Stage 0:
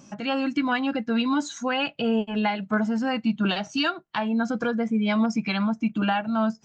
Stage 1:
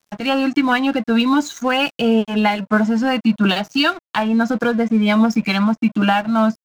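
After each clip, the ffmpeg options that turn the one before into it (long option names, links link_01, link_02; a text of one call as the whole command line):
ffmpeg -i in.wav -af "highpass=frequency=110:width=0.5412,highpass=frequency=110:width=1.3066,aeval=exprs='sgn(val(0))*max(abs(val(0))-0.00631,0)':channel_layout=same,volume=8.5dB" out.wav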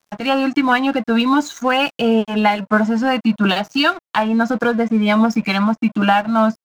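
ffmpeg -i in.wav -af "equalizer=frequency=930:width_type=o:width=2.1:gain=4,volume=-1dB" out.wav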